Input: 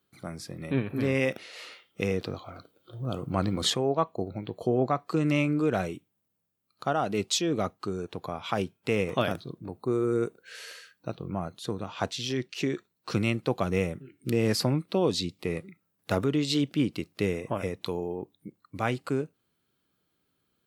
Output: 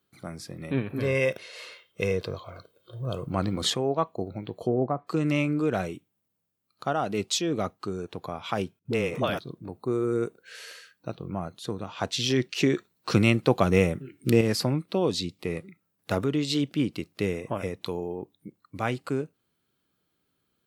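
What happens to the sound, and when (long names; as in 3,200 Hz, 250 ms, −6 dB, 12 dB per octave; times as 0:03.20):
0:00.99–0:03.28: comb filter 1.9 ms, depth 54%
0:04.62–0:05.07: treble cut that deepens with the level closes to 820 Hz, closed at −20.5 dBFS
0:08.79–0:09.39: all-pass dispersion highs, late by 63 ms, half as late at 400 Hz
0:12.13–0:14.41: clip gain +6 dB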